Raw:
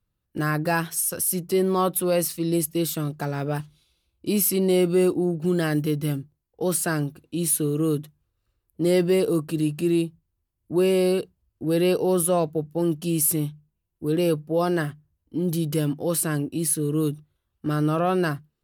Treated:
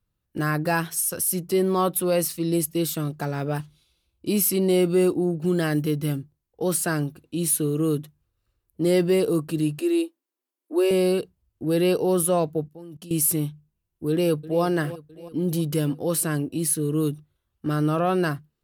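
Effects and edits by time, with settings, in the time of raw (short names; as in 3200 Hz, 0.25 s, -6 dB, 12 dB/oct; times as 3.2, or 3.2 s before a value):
9.79–10.91 steep high-pass 260 Hz 72 dB/oct
12.68–13.11 level quantiser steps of 20 dB
14.1–14.62 echo throw 0.33 s, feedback 60%, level -16 dB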